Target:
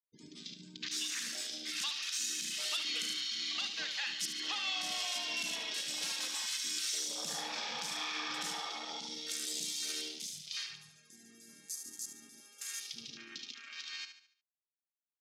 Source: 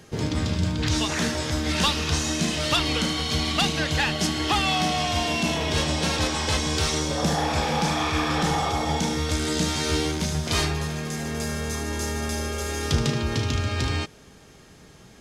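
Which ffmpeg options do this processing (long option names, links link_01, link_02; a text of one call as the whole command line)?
ffmpeg -i in.wav -filter_complex "[0:a]aderivative,acrossover=split=180[link_01][link_02];[link_01]acrusher=bits=3:dc=4:mix=0:aa=0.000001[link_03];[link_02]bass=frequency=250:gain=14,treble=frequency=4000:gain=-3[link_04];[link_03][link_04]amix=inputs=2:normalize=0,alimiter=level_in=1.5dB:limit=-24dB:level=0:latency=1:release=123,volume=-1.5dB,afftfilt=real='re*gte(hypot(re,im),0.00631)':imag='im*gte(hypot(re,im),0.00631)':win_size=1024:overlap=0.75,afwtdn=0.00631,aecho=1:1:72|144|216|288|360:0.335|0.141|0.0591|0.0248|0.0104" out.wav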